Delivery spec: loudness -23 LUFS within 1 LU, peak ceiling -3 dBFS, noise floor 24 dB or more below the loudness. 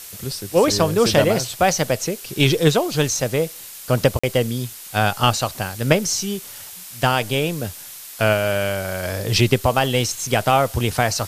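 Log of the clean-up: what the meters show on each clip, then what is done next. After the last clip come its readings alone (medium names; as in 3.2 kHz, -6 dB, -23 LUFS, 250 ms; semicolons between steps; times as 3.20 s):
dropouts 1; longest dropout 45 ms; noise floor -38 dBFS; noise floor target -44 dBFS; loudness -20.0 LUFS; peak level -2.0 dBFS; loudness target -23.0 LUFS
-> interpolate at 4.19 s, 45 ms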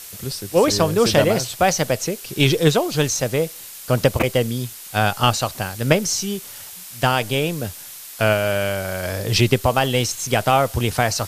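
dropouts 0; noise floor -38 dBFS; noise floor target -44 dBFS
-> noise reduction 6 dB, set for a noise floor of -38 dBFS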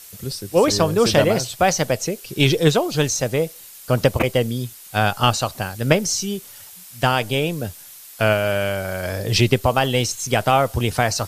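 noise floor -42 dBFS; noise floor target -44 dBFS
-> noise reduction 6 dB, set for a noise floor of -42 dBFS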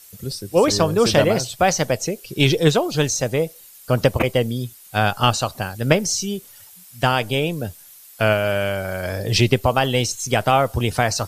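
noise floor -45 dBFS; loudness -20.0 LUFS; peak level -2.0 dBFS; loudness target -23.0 LUFS
-> trim -3 dB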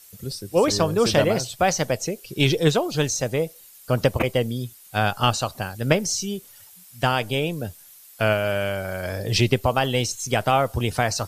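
loudness -23.0 LUFS; peak level -5.0 dBFS; noise floor -48 dBFS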